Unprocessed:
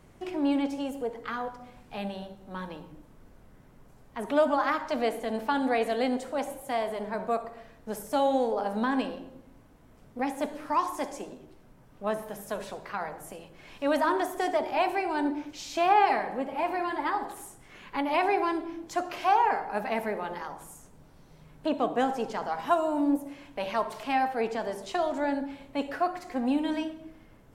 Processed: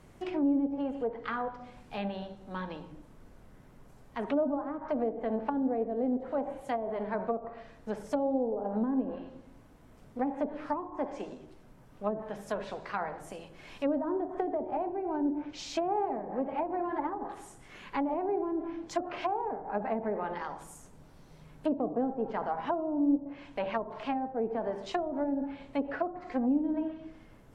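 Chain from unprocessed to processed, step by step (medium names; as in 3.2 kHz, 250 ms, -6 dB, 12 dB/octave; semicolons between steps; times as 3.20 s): low-pass that closes with the level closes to 450 Hz, closed at -24.5 dBFS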